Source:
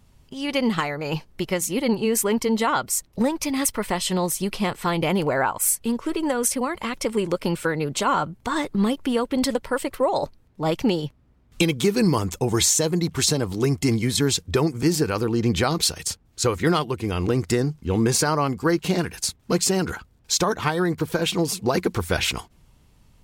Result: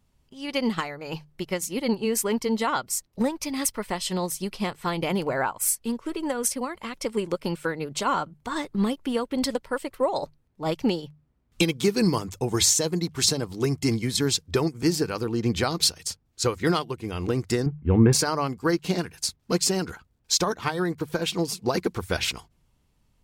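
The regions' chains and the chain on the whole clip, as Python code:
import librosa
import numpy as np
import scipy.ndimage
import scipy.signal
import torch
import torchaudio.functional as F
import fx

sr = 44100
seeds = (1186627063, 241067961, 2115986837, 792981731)

y = fx.chain(x, sr, fx.lowpass(hz=2400.0, slope=24),
    fx.low_shelf(hz=210.0, db=9.0), at=(17.66, 18.13))
y = fx.dynamic_eq(y, sr, hz=4900.0, q=2.3, threshold_db=-42.0, ratio=4.0, max_db=4)
y = fx.hum_notches(y, sr, base_hz=50, count=3)
y = fx.upward_expand(y, sr, threshold_db=-34.0, expansion=1.5)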